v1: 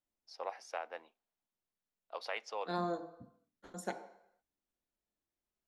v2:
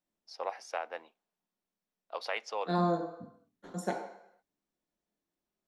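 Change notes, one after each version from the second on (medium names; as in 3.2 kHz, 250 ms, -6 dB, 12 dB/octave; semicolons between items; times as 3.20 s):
first voice +4.5 dB; second voice: send +10.0 dB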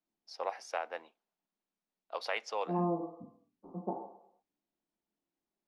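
second voice: add rippled Chebyshev low-pass 1.2 kHz, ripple 6 dB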